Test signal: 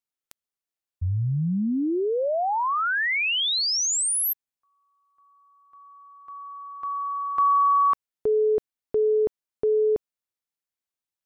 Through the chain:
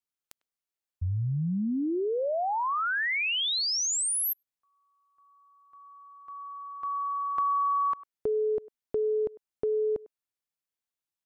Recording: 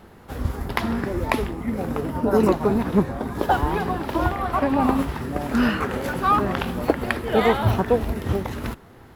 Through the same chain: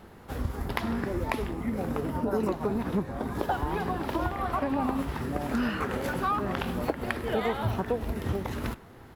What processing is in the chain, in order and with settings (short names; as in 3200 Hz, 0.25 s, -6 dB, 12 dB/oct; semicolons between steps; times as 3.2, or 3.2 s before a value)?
speakerphone echo 0.1 s, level -22 dB; compressor 3:1, threshold -24 dBFS; gain -2.5 dB